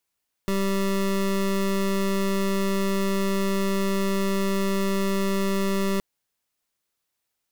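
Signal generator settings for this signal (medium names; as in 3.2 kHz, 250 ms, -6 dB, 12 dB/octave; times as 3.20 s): pulse 195 Hz, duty 25% -23.5 dBFS 5.52 s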